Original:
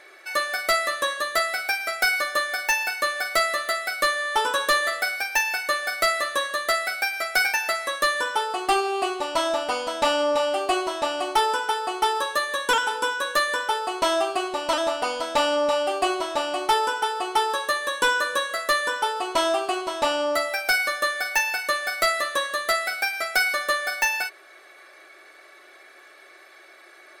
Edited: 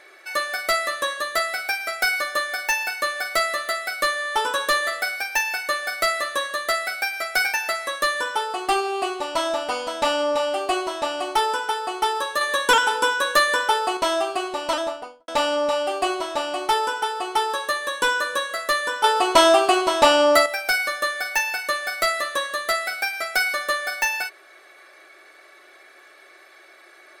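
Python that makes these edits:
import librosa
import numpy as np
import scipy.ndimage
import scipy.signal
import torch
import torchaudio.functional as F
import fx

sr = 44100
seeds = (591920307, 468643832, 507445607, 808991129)

y = fx.studio_fade_out(x, sr, start_s=14.7, length_s=0.58)
y = fx.edit(y, sr, fx.clip_gain(start_s=12.41, length_s=1.56, db=4.5),
    fx.clip_gain(start_s=19.04, length_s=1.42, db=8.0), tone=tone)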